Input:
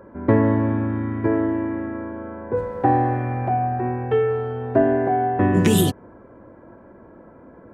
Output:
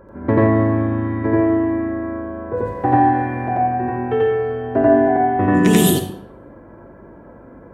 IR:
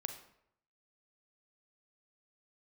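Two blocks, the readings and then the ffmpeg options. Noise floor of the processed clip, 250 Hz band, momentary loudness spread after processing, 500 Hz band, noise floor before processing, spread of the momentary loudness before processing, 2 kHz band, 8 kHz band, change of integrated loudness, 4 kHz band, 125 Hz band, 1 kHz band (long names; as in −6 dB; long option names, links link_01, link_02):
−42 dBFS, +4.0 dB, 11 LU, +3.5 dB, −47 dBFS, 10 LU, +5.0 dB, +6.0 dB, +3.5 dB, +4.0 dB, +1.5 dB, +4.5 dB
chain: -filter_complex "[0:a]aeval=exprs='val(0)+0.00282*(sin(2*PI*50*n/s)+sin(2*PI*2*50*n/s)/2+sin(2*PI*3*50*n/s)/3+sin(2*PI*4*50*n/s)/4+sin(2*PI*5*50*n/s)/5)':channel_layout=same,asplit=2[link_01][link_02];[1:a]atrim=start_sample=2205,highshelf=frequency=7700:gain=6,adelay=88[link_03];[link_02][link_03]afir=irnorm=-1:irlink=0,volume=4dB[link_04];[link_01][link_04]amix=inputs=2:normalize=0,volume=-1dB"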